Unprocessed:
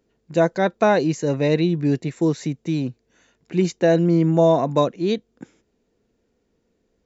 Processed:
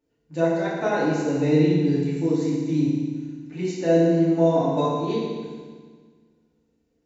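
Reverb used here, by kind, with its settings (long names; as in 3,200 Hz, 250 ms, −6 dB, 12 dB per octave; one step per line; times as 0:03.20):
feedback delay network reverb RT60 1.6 s, low-frequency decay 1.25×, high-frequency decay 0.95×, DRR −9 dB
level −13.5 dB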